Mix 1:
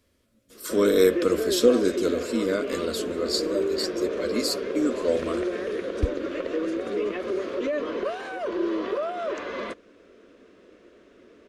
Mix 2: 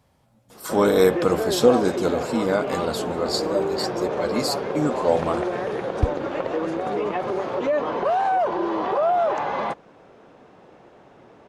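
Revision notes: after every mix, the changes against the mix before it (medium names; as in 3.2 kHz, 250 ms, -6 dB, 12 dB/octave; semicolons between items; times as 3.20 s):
master: remove static phaser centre 340 Hz, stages 4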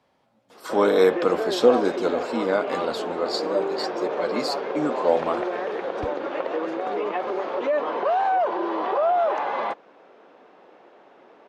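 background: add high-pass 240 Hz 6 dB/octave; master: add three-band isolator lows -18 dB, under 220 Hz, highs -14 dB, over 5.2 kHz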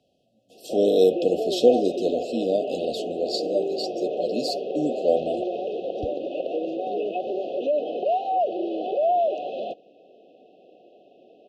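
background: add low-pass 4.2 kHz 12 dB/octave; master: add brick-wall FIR band-stop 770–2500 Hz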